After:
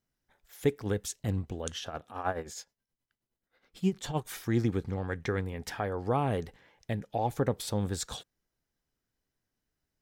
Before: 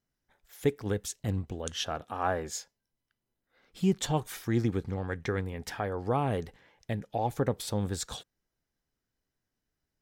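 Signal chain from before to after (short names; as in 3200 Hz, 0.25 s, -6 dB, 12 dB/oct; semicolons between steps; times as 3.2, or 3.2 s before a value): 1.76–4.27 tremolo 9.5 Hz, depth 72%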